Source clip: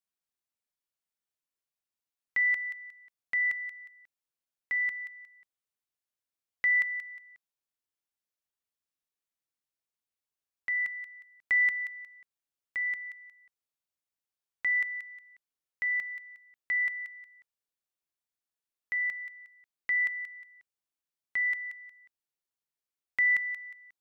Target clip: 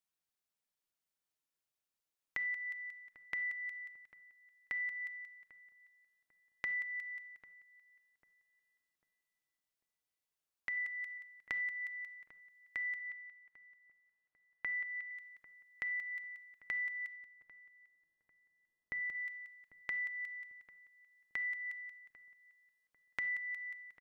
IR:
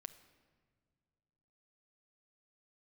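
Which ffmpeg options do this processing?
-filter_complex "[0:a]asettb=1/sr,asplit=3[a][b][c];[a]atrim=end=10.774[d];[b]atrim=start=10.77:end=11.18,asetpts=PTS-STARTPTS,afade=t=in:d=0.004:c=qsin,afade=t=out:st=0.406:d=0.004:c=qsin,aecho=1:1:2.4:0.95,atrim=end_sample=18081[e];[c]atrim=start=11.176[f];[d][e]acrossfade=d=0.004:c1=hsin:c2=qsin[g];[g][f]acrossfade=d=0.004:c1=qsin:c2=hsin,asettb=1/sr,asplit=3[h][i][j];[h]atrim=end=12.994[k];[i]atrim=start=12.99:end=15.11,asetpts=PTS-STARTPTS,afade=t=in:d=0.004:c=qsin,afade=t=out:st=2.116:d=0.004:c=qsin,lowpass=2.4k[l];[j]atrim=start=15.106[m];[k][l]acrossfade=d=0.004:c1=hsin:c2=qsin[n];[n][m]acrossfade=d=0.004:c1=qsin:c2=hsin,asettb=1/sr,asplit=3[o][p][q];[o]atrim=end=17.064[r];[p]atrim=start=17.06:end=19.15,asetpts=PTS-STARTPTS,afade=t=in:d=0.004:c=qsin,afade=t=out:st=2.086:d=0.004:c=qsin,tiltshelf=f=820:g=8[s];[q]atrim=start=19.146[t];[r][s]acrossfade=d=0.004:c1=hsin:c2=qsin[u];[u][t]acrossfade=d=0.004:c1=qsin:c2=hsin,acompressor=threshold=-38dB:ratio=6,asplit=2[v][w];[w]adelay=796,lowpass=f=1.1k:p=1,volume=-16.5dB,asplit=2[x][y];[y]adelay=796,lowpass=f=1.1k:p=1,volume=0.41,asplit=2[z][aa];[aa]adelay=796,lowpass=f=1.1k:p=1,volume=0.41,asplit=2[ab][ac];[ac]adelay=796,lowpass=f=1.1k:p=1,volume=0.41[ad];[v][x][z][ab][ad]amix=inputs=5:normalize=0[ae];[1:a]atrim=start_sample=2205,atrim=end_sample=4410[af];[ae][af]afir=irnorm=-1:irlink=0,volume=5.5dB"

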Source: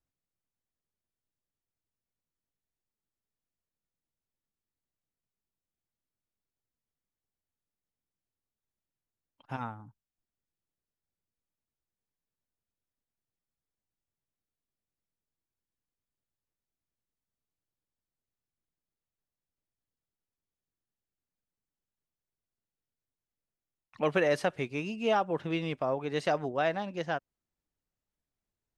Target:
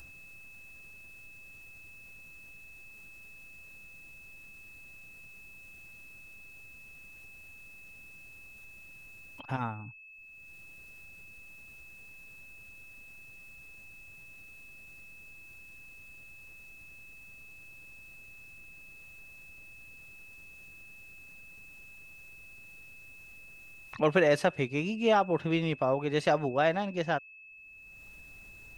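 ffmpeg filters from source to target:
-af "acompressor=mode=upward:threshold=-39dB:ratio=2.5,aeval=exprs='val(0)+0.00251*sin(2*PI*2600*n/s)':c=same,lowshelf=f=100:g=7,volume=2.5dB"

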